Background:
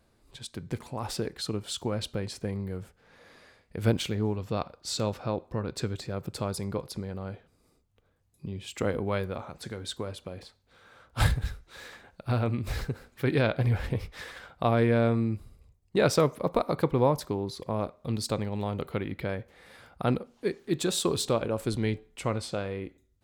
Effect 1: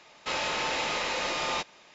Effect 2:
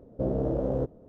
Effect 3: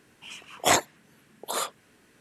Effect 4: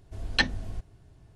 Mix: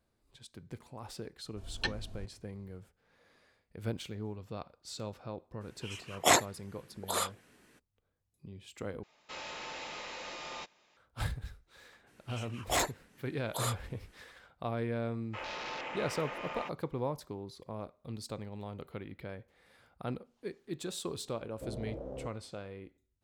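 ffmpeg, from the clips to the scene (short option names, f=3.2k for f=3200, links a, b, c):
-filter_complex "[3:a]asplit=2[a][b];[1:a]asplit=2[c][d];[0:a]volume=-11.5dB[e];[4:a]bandreject=f=2k:w=9.2[f];[b]asoftclip=type=tanh:threshold=-19dB[g];[d]afwtdn=0.0224[h];[2:a]equalizer=f=160:t=o:w=2.4:g=-5[i];[e]asplit=2[j][k];[j]atrim=end=9.034[l];[c]atrim=end=1.94,asetpts=PTS-STARTPTS,volume=-13dB[m];[k]atrim=start=10.966[n];[f]atrim=end=1.35,asetpts=PTS-STARTPTS,volume=-10dB,afade=t=in:d=0.004:c=hsin,afade=t=out:st=1.346:d=0.004:c=hsin,adelay=1450[o];[a]atrim=end=2.2,asetpts=PTS-STARTPTS,volume=-3dB,afade=t=in:d=0.02,afade=t=out:st=2.18:d=0.02,adelay=5600[p];[g]atrim=end=2.2,asetpts=PTS-STARTPTS,volume=-5dB,afade=t=in:d=0.02,afade=t=out:st=2.18:d=0.02,adelay=12060[q];[h]atrim=end=1.94,asetpts=PTS-STARTPTS,volume=-9.5dB,afade=t=in:d=0.004:c=hsin,afade=t=out:st=1.936:d=0.004:c=hsin,adelay=15070[r];[i]atrim=end=1.08,asetpts=PTS-STARTPTS,volume=-12dB,afade=t=in:d=0.004:c=hsin,afade=t=out:st=1.076:d=0.004:c=hsin,adelay=21420[s];[l][m]acrossfade=d=0.004:c1=hsin:c2=hsin[t];[t][n]acrossfade=d=0.004:c1=hsin:c2=hsin[u];[u][o][p][q][r][s]amix=inputs=6:normalize=0"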